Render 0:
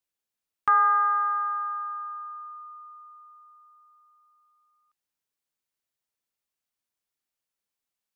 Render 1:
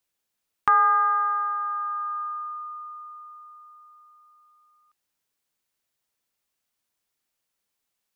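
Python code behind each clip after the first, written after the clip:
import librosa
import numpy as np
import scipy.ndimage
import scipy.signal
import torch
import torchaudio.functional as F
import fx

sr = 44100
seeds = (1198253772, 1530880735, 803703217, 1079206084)

y = fx.dynamic_eq(x, sr, hz=1400.0, q=0.8, threshold_db=-35.0, ratio=4.0, max_db=-6)
y = y * librosa.db_to_amplitude(7.0)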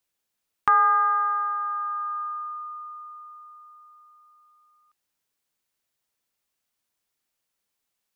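y = x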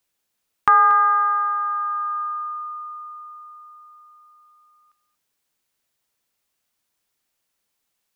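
y = x + 10.0 ** (-15.5 / 20.0) * np.pad(x, (int(233 * sr / 1000.0), 0))[:len(x)]
y = y * librosa.db_to_amplitude(4.5)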